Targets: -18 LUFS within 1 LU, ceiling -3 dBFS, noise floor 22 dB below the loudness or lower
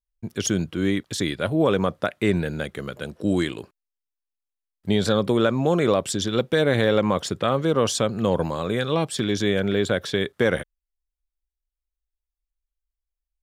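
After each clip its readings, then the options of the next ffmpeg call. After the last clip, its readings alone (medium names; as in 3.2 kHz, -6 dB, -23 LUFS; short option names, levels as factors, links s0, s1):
loudness -23.0 LUFS; peak level -6.0 dBFS; loudness target -18.0 LUFS
-> -af "volume=1.78,alimiter=limit=0.708:level=0:latency=1"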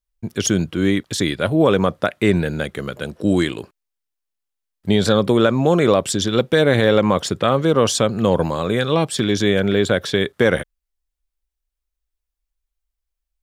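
loudness -18.5 LUFS; peak level -3.0 dBFS; noise floor -81 dBFS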